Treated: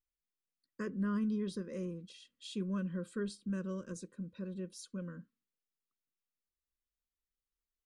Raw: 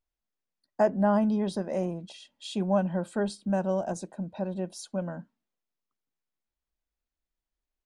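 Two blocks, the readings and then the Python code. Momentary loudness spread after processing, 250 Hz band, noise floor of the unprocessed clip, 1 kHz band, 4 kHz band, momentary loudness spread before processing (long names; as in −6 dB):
12 LU, −8.0 dB, below −85 dBFS, −19.5 dB, −7.5 dB, 15 LU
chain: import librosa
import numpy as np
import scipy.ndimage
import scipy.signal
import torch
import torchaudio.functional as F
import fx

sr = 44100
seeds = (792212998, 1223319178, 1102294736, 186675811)

y = scipy.signal.sosfilt(scipy.signal.ellip(3, 1.0, 60, [510.0, 1100.0], 'bandstop', fs=sr, output='sos'), x)
y = y * librosa.db_to_amplitude(-7.5)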